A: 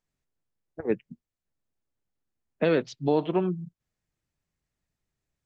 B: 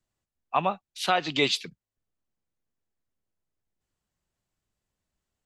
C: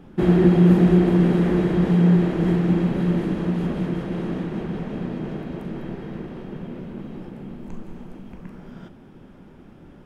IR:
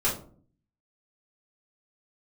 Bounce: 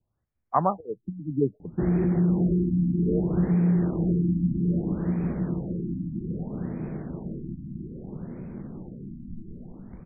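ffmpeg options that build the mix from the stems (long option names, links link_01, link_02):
-filter_complex "[0:a]lowpass=frequency=470:width_type=q:width=4.9,volume=-19.5dB[link_01];[1:a]volume=2dB[link_02];[2:a]alimiter=limit=-12.5dB:level=0:latency=1:release=87,adelay=1600,volume=-7dB[link_03];[link_01][link_02][link_03]amix=inputs=3:normalize=0,equalizer=frequency=88:width=0.67:gain=9,afftfilt=real='re*lt(b*sr/1024,310*pow(2600/310,0.5+0.5*sin(2*PI*0.62*pts/sr)))':imag='im*lt(b*sr/1024,310*pow(2600/310,0.5+0.5*sin(2*PI*0.62*pts/sr)))':win_size=1024:overlap=0.75"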